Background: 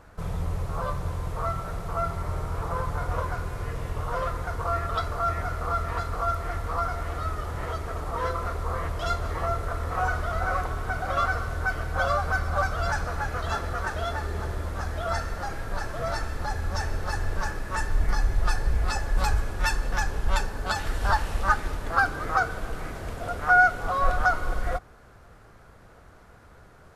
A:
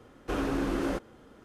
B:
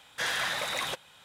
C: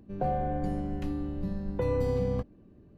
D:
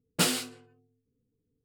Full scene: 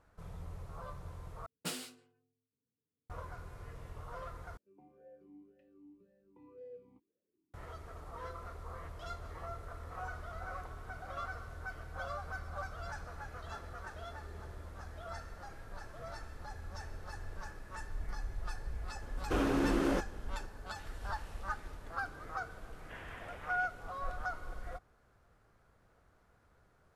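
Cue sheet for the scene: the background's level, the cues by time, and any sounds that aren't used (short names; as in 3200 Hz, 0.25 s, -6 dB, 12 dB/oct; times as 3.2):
background -16.5 dB
1.46 replace with D -14.5 dB + HPF 100 Hz
4.57 replace with C -16.5 dB + vowel sweep e-u 1.9 Hz
19.02 add A -1 dB
22.71 add B -17 dB + CVSD 16 kbps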